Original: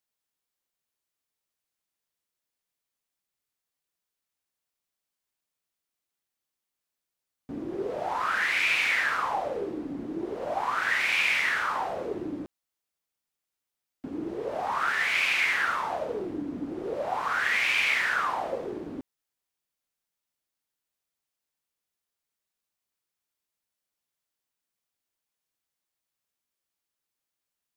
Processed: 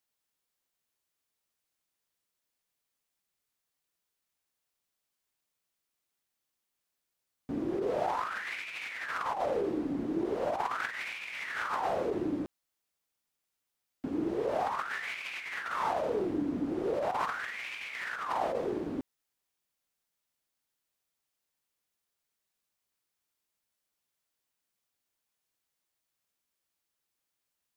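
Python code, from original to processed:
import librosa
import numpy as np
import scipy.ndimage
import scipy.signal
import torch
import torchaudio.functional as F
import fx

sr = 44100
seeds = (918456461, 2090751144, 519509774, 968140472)

y = fx.over_compress(x, sr, threshold_db=-31.0, ratio=-0.5)
y = F.gain(torch.from_numpy(y), -1.5).numpy()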